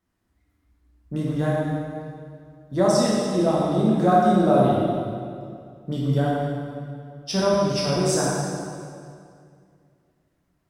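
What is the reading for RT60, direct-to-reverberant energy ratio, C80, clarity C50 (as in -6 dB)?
2.3 s, -6.0 dB, -0.5 dB, -2.0 dB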